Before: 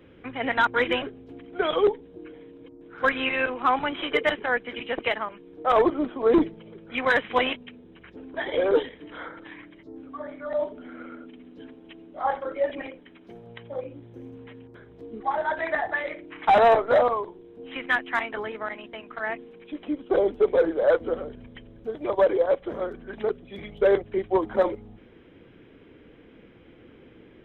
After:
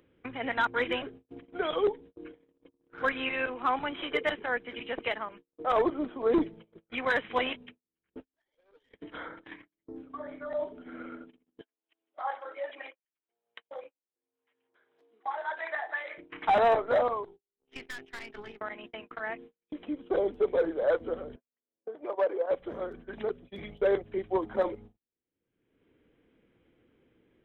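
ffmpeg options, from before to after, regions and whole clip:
-filter_complex "[0:a]asettb=1/sr,asplit=3[a][b][c];[a]atrim=end=8.204[d];[b]atrim=start=8.2:end=8.91,asetpts=PTS-STARTPTS,afade=t=in:d=0.004:c=qsin,afade=t=out:st=0.706:d=0.004:c=qsin,equalizer=f=350:w=0.4:g=-9,acompressor=threshold=-39dB:ratio=16:attack=3.2:release=140:knee=1:detection=peak,aeval=exprs='(tanh(126*val(0)+0.1)-tanh(0.1))/126':c=same[e];[c]atrim=start=8.906[f];[d][e]acrossfade=d=0.004:c1=hsin:c2=qsin[g];[g][f]acrossfade=d=0.004:c1=qsin:c2=hsin,asettb=1/sr,asplit=3[h][i][j];[h]atrim=end=11.614[k];[i]atrim=start=11.61:end=16.18,asetpts=PTS-STARTPTS,afade=t=in:d=0.004:c=qsin,afade=t=out:st=4.566:d=0.004:c=qsin,highpass=740,aecho=1:1:164:0.0841,atrim=end_sample=201537[l];[j]atrim=start=16.176[m];[k][l]acrossfade=d=0.004:c1=hsin:c2=qsin[n];[n][m]acrossfade=d=0.004:c1=qsin:c2=hsin,asettb=1/sr,asplit=3[o][p][q];[o]atrim=end=17.254[r];[p]atrim=start=17.25:end=18.61,asetpts=PTS-STARTPTS,afade=t=in:d=0.004:c=qsin,afade=t=out:st=1.356:d=0.004:c=qsin,equalizer=f=750:w=0.57:g=-11.5,aeval=exprs='val(0)+0.00631*sin(2*PI*400*n/s)':c=same,aeval=exprs='(tanh(50.1*val(0)+0.65)-tanh(0.65))/50.1':c=same[s];[q]atrim=start=18.606[t];[r][s]acrossfade=d=0.004:c1=hsin:c2=qsin[u];[u][t]acrossfade=d=0.004:c1=qsin:c2=hsin,asettb=1/sr,asplit=3[v][w][x];[v]atrim=end=21.364[y];[w]atrim=start=21.36:end=22.51,asetpts=PTS-STARTPTS,afade=t=in:d=0.004:c=qsin,afade=t=out:st=1.146:d=0.004:c=qsin,adynamicsmooth=sensitivity=0.5:basefreq=1.7k,highpass=420[z];[x]atrim=start=22.506[aa];[y][z]acrossfade=d=0.004:c1=hsin:c2=qsin[ab];[ab][aa]acrossfade=d=0.004:c1=qsin:c2=hsin,agate=range=-52dB:threshold=-41dB:ratio=16:detection=peak,acompressor=mode=upward:threshold=-29dB:ratio=2.5,volume=-6dB"

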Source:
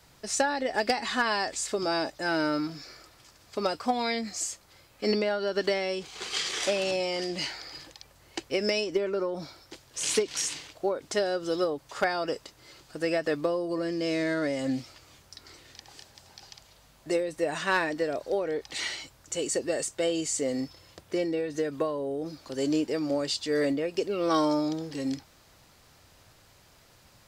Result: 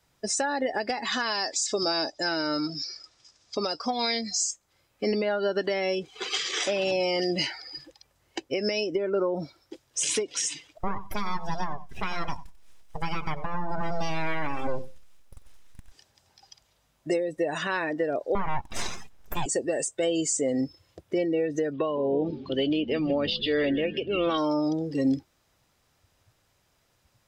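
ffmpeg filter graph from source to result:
-filter_complex "[0:a]asettb=1/sr,asplit=3[a][b][c];[a]atrim=end=1.124[d];[b]atrim=start=1.12:end=4.51,asetpts=PTS-STARTPTS,afade=t=in:d=0.004:c=qsin,afade=t=out:st=3.386:d=0.004:c=qsin,lowpass=f=6.3k:w=0.5412,lowpass=f=6.3k:w=1.3066,bass=f=250:g=-2,treble=f=4k:g=14[e];[c]atrim=start=4.506[f];[d][e]acrossfade=d=0.004:c1=hsin:c2=qsin[g];[g][f]acrossfade=d=0.004:c1=qsin:c2=hsin,asettb=1/sr,asplit=3[h][i][j];[h]atrim=end=10.784[k];[i]atrim=start=10.78:end=15.92,asetpts=PTS-STARTPTS,afade=t=in:d=0.004:c=qsin,afade=t=out:st=5.136:d=0.004:c=qsin,aeval=exprs='abs(val(0))':c=same,aecho=1:1:92|184|276:0.237|0.0711|0.0213,atrim=end_sample=226674[l];[j]atrim=start=15.916[m];[k][l]acrossfade=d=0.004:c1=hsin:c2=qsin[n];[n][m]acrossfade=d=0.004:c1=qsin:c2=hsin,asettb=1/sr,asplit=3[o][p][q];[o]atrim=end=18.354[r];[p]atrim=start=18.35:end=19.46,asetpts=PTS-STARTPTS,afade=t=in:d=0.004:c=qsin,afade=t=out:st=1.106:d=0.004:c=qsin,highshelf=f=4k:g=-7,acontrast=61,aeval=exprs='abs(val(0))':c=same[s];[q]atrim=start=19.456[t];[r][s]acrossfade=d=0.004:c1=hsin:c2=qsin[u];[u][t]acrossfade=d=0.004:c1=qsin:c2=hsin,asettb=1/sr,asplit=3[v][w][x];[v]atrim=end=21.734[y];[w]atrim=start=21.73:end=24.38,asetpts=PTS-STARTPTS,afade=t=in:d=0.004:c=qsin,afade=t=out:st=2.646:d=0.004:c=qsin,lowpass=f=3.2k:t=q:w=3.5,asplit=7[z][aa][ab][ac][ad][ae][af];[aa]adelay=160,afreqshift=-71,volume=-15dB[ag];[ab]adelay=320,afreqshift=-142,volume=-19.3dB[ah];[ac]adelay=480,afreqshift=-213,volume=-23.6dB[ai];[ad]adelay=640,afreqshift=-284,volume=-27.9dB[aj];[ae]adelay=800,afreqshift=-355,volume=-32.2dB[ak];[af]adelay=960,afreqshift=-426,volume=-36.5dB[al];[z][ag][ah][ai][aj][ak][al]amix=inputs=7:normalize=0,atrim=end_sample=116865[am];[x]atrim=start=24.376[an];[y][am]acrossfade=d=0.004:c1=hsin:c2=qsin[ao];[ao][an]acrossfade=d=0.004:c1=qsin:c2=hsin,bandreject=f=4.4k:w=13,afftdn=nr=18:nf=-39,alimiter=level_in=0.5dB:limit=-24dB:level=0:latency=1:release=374,volume=-0.5dB,volume=7.5dB"

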